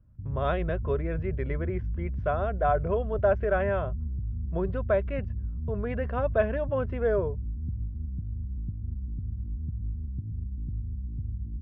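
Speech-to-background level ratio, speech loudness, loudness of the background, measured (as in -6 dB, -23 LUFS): 5.0 dB, -30.0 LUFS, -35.0 LUFS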